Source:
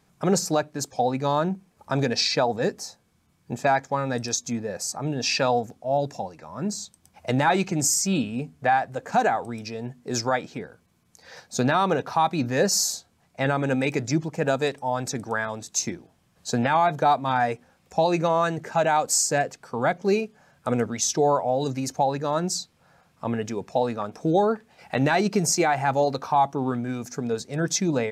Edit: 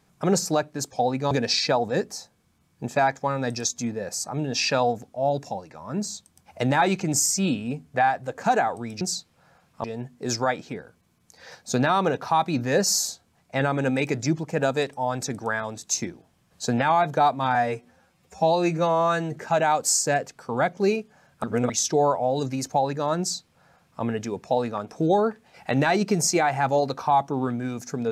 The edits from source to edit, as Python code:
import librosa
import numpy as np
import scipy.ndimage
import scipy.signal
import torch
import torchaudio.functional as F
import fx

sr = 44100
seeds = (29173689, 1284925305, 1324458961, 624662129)

y = fx.edit(x, sr, fx.cut(start_s=1.31, length_s=0.68),
    fx.stretch_span(start_s=17.4, length_s=1.21, factor=1.5),
    fx.reverse_span(start_s=20.68, length_s=0.26),
    fx.duplicate(start_s=22.44, length_s=0.83, to_s=9.69), tone=tone)